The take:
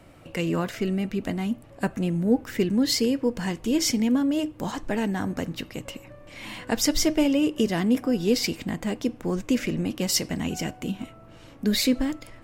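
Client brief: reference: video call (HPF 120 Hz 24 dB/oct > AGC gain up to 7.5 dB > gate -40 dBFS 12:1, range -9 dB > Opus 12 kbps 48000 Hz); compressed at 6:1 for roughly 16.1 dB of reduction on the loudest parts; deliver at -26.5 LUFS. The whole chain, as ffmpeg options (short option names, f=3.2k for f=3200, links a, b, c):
-af "acompressor=threshold=-35dB:ratio=6,highpass=f=120:w=0.5412,highpass=f=120:w=1.3066,dynaudnorm=m=7.5dB,agate=range=-9dB:threshold=-40dB:ratio=12,volume=13dB" -ar 48000 -c:a libopus -b:a 12k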